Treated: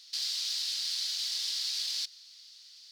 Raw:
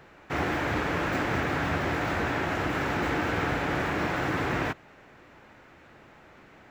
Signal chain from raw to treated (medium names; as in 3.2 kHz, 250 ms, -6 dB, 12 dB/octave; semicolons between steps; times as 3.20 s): saturation -29 dBFS, distortion -11 dB; resonant high-pass 2 kHz, resonance Q 3.9; wide varispeed 2.3×; trim -2.5 dB